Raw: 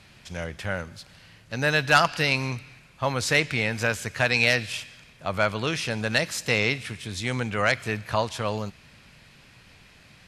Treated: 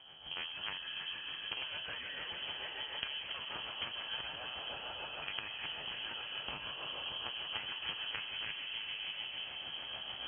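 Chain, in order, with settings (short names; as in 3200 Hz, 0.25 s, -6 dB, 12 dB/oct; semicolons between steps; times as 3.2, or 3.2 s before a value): stepped spectrum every 50 ms; recorder AGC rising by 6.4 dB/s; reverb RT60 3.0 s, pre-delay 95 ms, DRR 3 dB; compressor 6:1, threshold -35 dBFS, peak gain reduction 19.5 dB; low shelf 440 Hz +6.5 dB; added harmonics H 3 -8 dB, 4 -20 dB, 7 -27 dB, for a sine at -16.5 dBFS; resonator 780 Hz, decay 0.18 s, harmonics all, mix 70%; rotary speaker horn 6.7 Hz; inverted band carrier 3200 Hz; HPF 44 Hz; thinning echo 0.33 s, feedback 85%, high-pass 480 Hz, level -12 dB; gain +11.5 dB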